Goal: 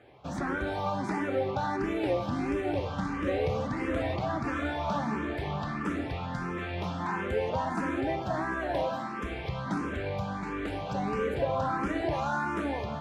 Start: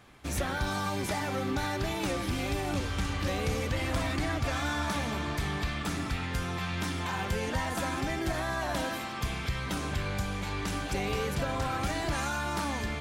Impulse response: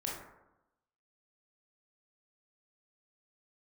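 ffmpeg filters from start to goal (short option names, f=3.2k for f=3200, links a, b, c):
-filter_complex "[0:a]bandpass=f=450:t=q:w=0.52:csg=0,asplit=2[a][b];[1:a]atrim=start_sample=2205[c];[b][c]afir=irnorm=-1:irlink=0,volume=-10dB[d];[a][d]amix=inputs=2:normalize=0,asplit=2[e][f];[f]afreqshift=1.5[g];[e][g]amix=inputs=2:normalize=1,volume=5.5dB"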